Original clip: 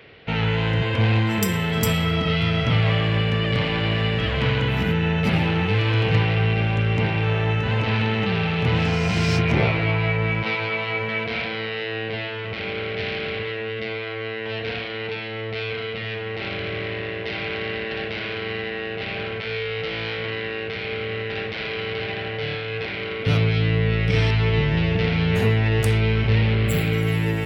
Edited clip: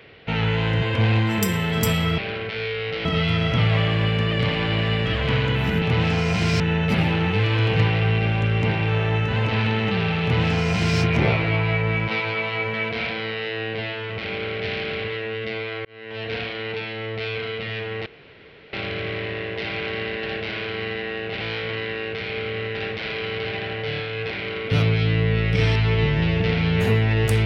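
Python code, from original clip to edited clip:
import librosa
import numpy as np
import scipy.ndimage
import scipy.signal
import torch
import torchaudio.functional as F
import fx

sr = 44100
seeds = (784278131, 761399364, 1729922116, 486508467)

y = fx.edit(x, sr, fx.duplicate(start_s=8.57, length_s=0.78, to_s=4.95),
    fx.fade_in_span(start_s=14.2, length_s=0.47),
    fx.insert_room_tone(at_s=16.41, length_s=0.67),
    fx.move(start_s=19.09, length_s=0.87, to_s=2.18), tone=tone)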